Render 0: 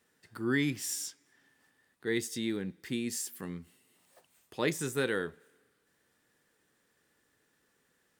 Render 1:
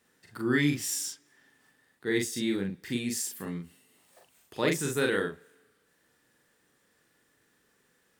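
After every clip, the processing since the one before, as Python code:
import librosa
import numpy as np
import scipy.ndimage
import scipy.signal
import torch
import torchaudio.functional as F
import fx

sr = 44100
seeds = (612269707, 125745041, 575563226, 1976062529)

y = fx.doubler(x, sr, ms=41.0, db=-2.5)
y = y * librosa.db_to_amplitude(2.0)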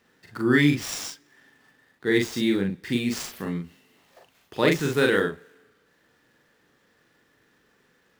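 y = scipy.ndimage.median_filter(x, 5, mode='constant')
y = y * librosa.db_to_amplitude(6.5)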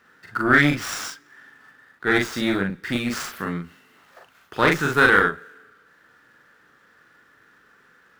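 y = fx.diode_clip(x, sr, knee_db=-22.5)
y = fx.peak_eq(y, sr, hz=1400.0, db=13.5, octaves=0.78)
y = y * librosa.db_to_amplitude(1.5)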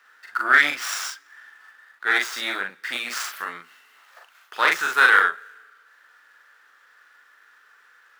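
y = scipy.signal.sosfilt(scipy.signal.butter(2, 920.0, 'highpass', fs=sr, output='sos'), x)
y = y * librosa.db_to_amplitude(2.0)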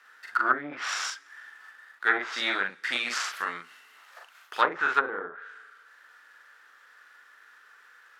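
y = fx.env_lowpass_down(x, sr, base_hz=440.0, full_db=-13.5)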